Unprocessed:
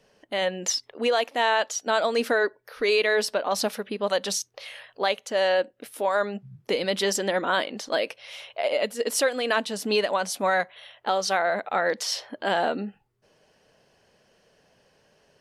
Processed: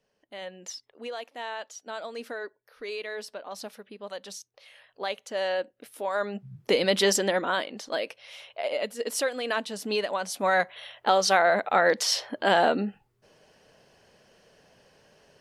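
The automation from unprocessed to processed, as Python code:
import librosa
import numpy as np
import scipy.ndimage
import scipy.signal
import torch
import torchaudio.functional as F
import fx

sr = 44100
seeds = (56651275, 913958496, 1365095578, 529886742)

y = fx.gain(x, sr, db=fx.line((4.6, -13.5), (5.17, -6.0), (6.06, -6.0), (6.62, 2.5), (7.12, 2.5), (7.63, -4.5), (10.25, -4.5), (10.73, 3.0)))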